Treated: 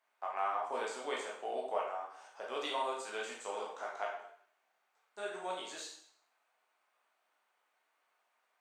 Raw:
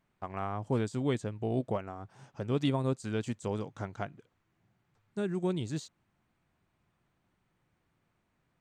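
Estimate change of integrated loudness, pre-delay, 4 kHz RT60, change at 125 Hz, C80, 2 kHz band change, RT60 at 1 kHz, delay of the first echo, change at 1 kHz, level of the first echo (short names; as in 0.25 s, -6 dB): -5.0 dB, 13 ms, 0.60 s, under -35 dB, 7.5 dB, +3.0 dB, 0.65 s, none, +3.5 dB, none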